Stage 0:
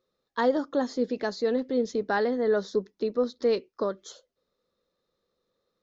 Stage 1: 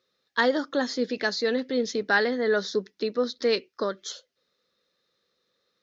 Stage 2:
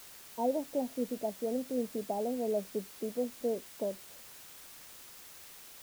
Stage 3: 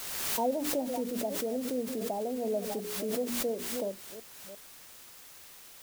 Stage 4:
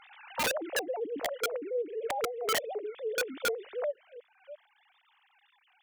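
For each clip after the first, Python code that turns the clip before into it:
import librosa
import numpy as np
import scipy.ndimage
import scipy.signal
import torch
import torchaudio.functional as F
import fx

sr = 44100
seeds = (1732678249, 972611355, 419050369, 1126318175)

y1 = scipy.signal.sosfilt(scipy.signal.butter(2, 89.0, 'highpass', fs=sr, output='sos'), x)
y1 = fx.band_shelf(y1, sr, hz=3000.0, db=10.0, octaves=2.4)
y2 = scipy.signal.sosfilt(scipy.signal.cheby1(6, 6, 950.0, 'lowpass', fs=sr, output='sos'), y1)
y2 = y2 + 0.36 * np.pad(y2, (int(1.6 * sr / 1000.0), 0))[:len(y2)]
y2 = fx.quant_dither(y2, sr, seeds[0], bits=8, dither='triangular')
y2 = y2 * 10.0 ** (-3.5 / 20.0)
y3 = fx.reverse_delay(y2, sr, ms=350, wet_db=-13.0)
y3 = fx.hum_notches(y3, sr, base_hz=60, count=7)
y3 = fx.pre_swell(y3, sr, db_per_s=30.0)
y4 = fx.sine_speech(y3, sr)
y4 = (np.mod(10.0 ** (24.0 / 20.0) * y4 + 1.0, 2.0) - 1.0) / 10.0 ** (24.0 / 20.0)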